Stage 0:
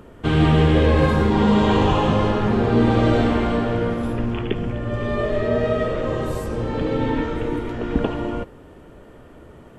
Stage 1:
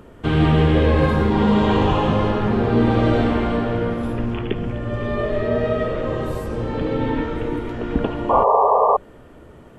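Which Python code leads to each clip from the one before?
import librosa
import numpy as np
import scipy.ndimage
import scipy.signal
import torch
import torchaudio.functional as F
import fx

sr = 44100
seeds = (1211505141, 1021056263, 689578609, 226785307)

y = fx.dynamic_eq(x, sr, hz=7300.0, q=0.96, threshold_db=-49.0, ratio=4.0, max_db=-6)
y = fx.spec_paint(y, sr, seeds[0], shape='noise', start_s=8.29, length_s=0.68, low_hz=400.0, high_hz=1200.0, level_db=-15.0)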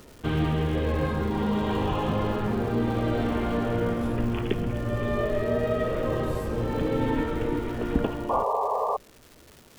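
y = fx.rider(x, sr, range_db=4, speed_s=0.5)
y = fx.dmg_crackle(y, sr, seeds[1], per_s=510.0, level_db=-33.0)
y = y * librosa.db_to_amplitude(-7.0)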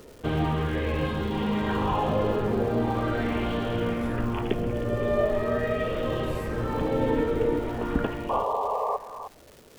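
y = x + 10.0 ** (-15.0 / 20.0) * np.pad(x, (int(311 * sr / 1000.0), 0))[:len(x)]
y = fx.bell_lfo(y, sr, hz=0.41, low_hz=450.0, high_hz=3200.0, db=8)
y = y * librosa.db_to_amplitude(-1.5)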